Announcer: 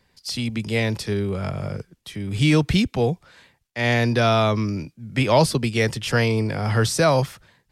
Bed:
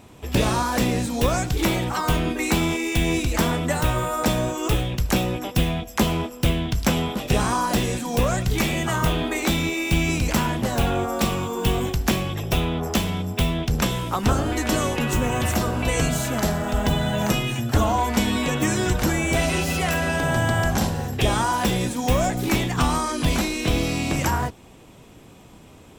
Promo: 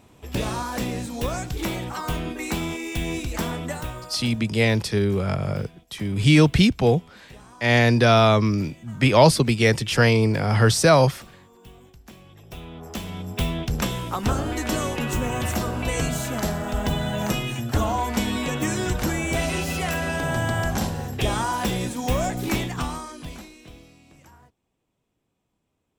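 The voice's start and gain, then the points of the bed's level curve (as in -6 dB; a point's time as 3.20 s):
3.85 s, +2.5 dB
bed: 3.67 s -6 dB
4.52 s -25.5 dB
12.06 s -25.5 dB
13.41 s -3 dB
22.60 s -3 dB
24.00 s -29 dB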